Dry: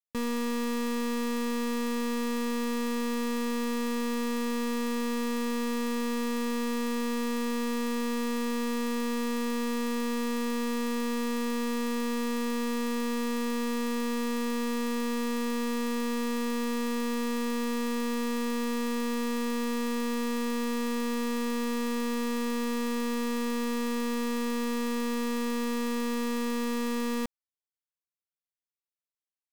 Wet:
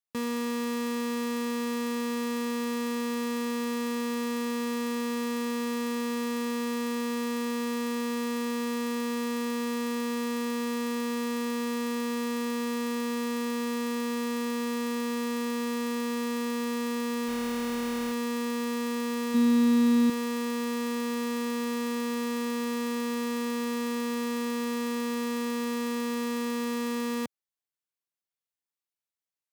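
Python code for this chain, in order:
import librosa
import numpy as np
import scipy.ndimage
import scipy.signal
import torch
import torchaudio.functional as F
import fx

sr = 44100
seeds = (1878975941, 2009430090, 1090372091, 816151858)

y = scipy.signal.sosfilt(scipy.signal.butter(2, 110.0, 'highpass', fs=sr, output='sos'), x)
y = fx.resample_bad(y, sr, factor=8, down='none', up='hold', at=(17.28, 18.12))
y = fx.small_body(y, sr, hz=(230.0, 3800.0), ring_ms=45, db=11, at=(19.34, 20.1))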